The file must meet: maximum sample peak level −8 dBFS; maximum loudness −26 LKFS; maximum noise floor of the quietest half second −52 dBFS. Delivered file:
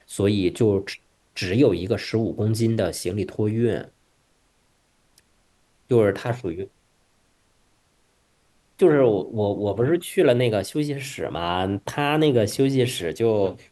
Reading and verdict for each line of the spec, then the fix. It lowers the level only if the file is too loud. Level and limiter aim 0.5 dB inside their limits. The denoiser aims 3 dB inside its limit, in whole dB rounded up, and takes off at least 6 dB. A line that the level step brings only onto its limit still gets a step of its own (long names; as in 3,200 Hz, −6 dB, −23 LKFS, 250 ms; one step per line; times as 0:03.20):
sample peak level −5.5 dBFS: out of spec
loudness −22.5 LKFS: out of spec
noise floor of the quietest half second −65 dBFS: in spec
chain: level −4 dB